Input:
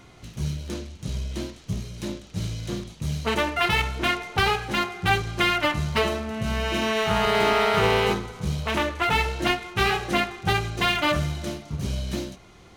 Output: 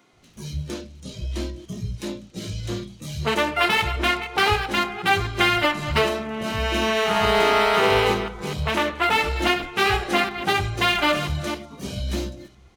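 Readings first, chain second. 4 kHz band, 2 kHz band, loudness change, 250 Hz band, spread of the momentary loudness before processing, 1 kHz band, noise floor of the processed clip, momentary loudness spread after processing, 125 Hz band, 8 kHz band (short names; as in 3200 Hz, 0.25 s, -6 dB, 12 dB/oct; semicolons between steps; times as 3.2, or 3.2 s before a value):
+3.0 dB, +3.0 dB, +3.0 dB, +1.0 dB, 12 LU, +3.0 dB, -50 dBFS, 15 LU, -1.0 dB, +1.5 dB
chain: reverse delay 0.251 s, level -11 dB; spectral noise reduction 10 dB; bands offset in time highs, lows 0.13 s, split 160 Hz; gain +2.5 dB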